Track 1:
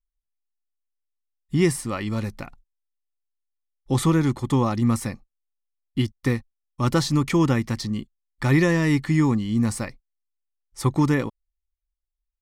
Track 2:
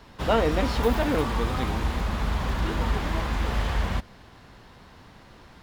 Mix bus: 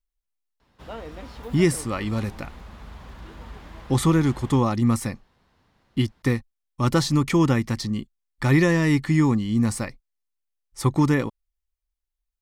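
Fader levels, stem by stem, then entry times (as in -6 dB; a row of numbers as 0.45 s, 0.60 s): +0.5 dB, -15.0 dB; 0.00 s, 0.60 s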